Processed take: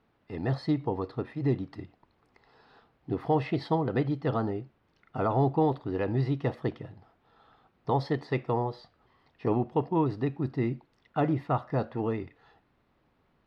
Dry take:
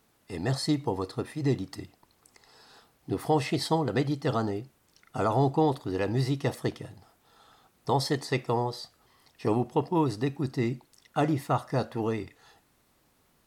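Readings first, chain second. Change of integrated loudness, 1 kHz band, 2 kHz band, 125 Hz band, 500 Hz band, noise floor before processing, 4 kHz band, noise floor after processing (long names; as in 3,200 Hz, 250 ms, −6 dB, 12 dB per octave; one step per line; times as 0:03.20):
−1.0 dB, −1.5 dB, −3.5 dB, 0.0 dB, −1.0 dB, −68 dBFS, −10.5 dB, −70 dBFS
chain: high-frequency loss of the air 340 metres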